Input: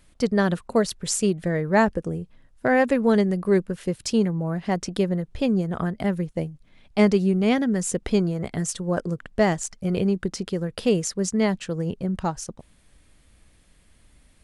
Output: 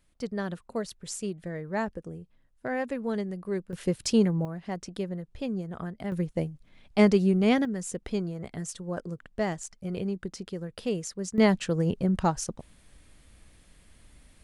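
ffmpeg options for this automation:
-af "asetnsamples=n=441:p=0,asendcmd='3.73 volume volume -1dB;4.45 volume volume -10dB;6.12 volume volume -2dB;7.65 volume volume -9dB;11.38 volume volume 1dB',volume=0.266"

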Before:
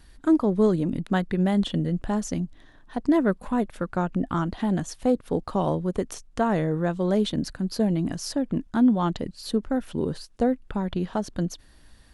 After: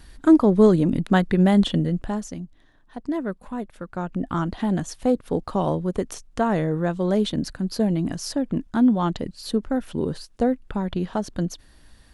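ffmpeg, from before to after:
-af "volume=4.47,afade=t=out:st=1.6:d=0.74:silence=0.266073,afade=t=in:st=3.86:d=0.58:silence=0.421697"

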